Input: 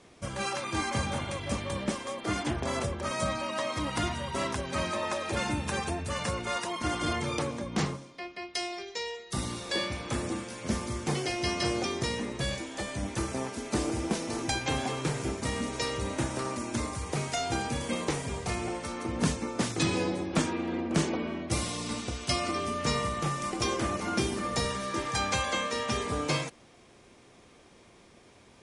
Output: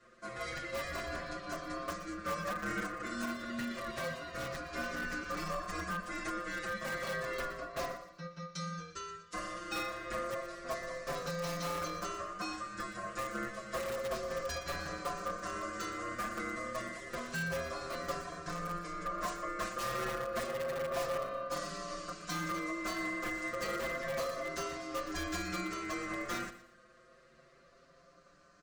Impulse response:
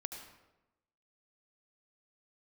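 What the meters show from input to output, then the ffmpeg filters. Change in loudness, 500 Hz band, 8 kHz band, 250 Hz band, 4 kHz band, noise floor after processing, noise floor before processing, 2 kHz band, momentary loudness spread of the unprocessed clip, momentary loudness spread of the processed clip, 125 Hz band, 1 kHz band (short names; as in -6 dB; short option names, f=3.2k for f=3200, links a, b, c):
-7.0 dB, -5.0 dB, -10.0 dB, -10.0 dB, -10.5 dB, -62 dBFS, -57 dBFS, -3.0 dB, 5 LU, 5 LU, -13.0 dB, -5.0 dB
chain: -filter_complex "[0:a]highpass=f=160:w=0.5412,highpass=f=160:w=1.3066,equalizer=f=220:t=q:w=4:g=5,equalizer=f=330:t=q:w=4:g=5,equalizer=f=620:t=q:w=4:g=6,equalizer=f=880:t=q:w=4:g=6,equalizer=f=2.2k:t=q:w=4:g=-10,lowpass=f=7.5k:w=0.5412,lowpass=f=7.5k:w=1.3066,bandreject=f=2.6k:w=5.1,aecho=1:1:5.9:0.96,asplit=2[a][b];[b]aeval=exprs='(mod(7.94*val(0)+1,2)-1)/7.94':c=same,volume=-4.5dB[c];[a][c]amix=inputs=2:normalize=0,aeval=exprs='val(0)*sin(2*PI*870*n/s)':c=same,asplit=2[d][e];[e]aecho=0:1:119|238|357:0.188|0.0584|0.0181[f];[d][f]amix=inputs=2:normalize=0,asoftclip=type=tanh:threshold=-12.5dB,asplit=2[g][h];[h]adelay=5.9,afreqshift=0.3[i];[g][i]amix=inputs=2:normalize=1,volume=-9dB"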